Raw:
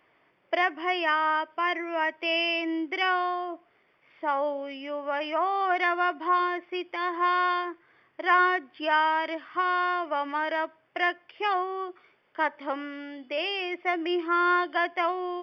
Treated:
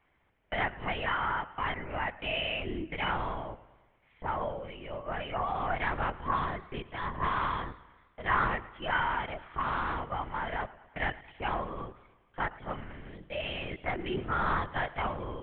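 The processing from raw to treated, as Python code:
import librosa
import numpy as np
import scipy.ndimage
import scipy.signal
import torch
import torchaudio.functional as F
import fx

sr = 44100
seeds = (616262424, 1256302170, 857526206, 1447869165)

y = fx.lpc_vocoder(x, sr, seeds[0], excitation='whisper', order=8)
y = fx.echo_warbled(y, sr, ms=108, feedback_pct=57, rate_hz=2.8, cents=115, wet_db=-19.0)
y = F.gain(torch.from_numpy(y), -6.0).numpy()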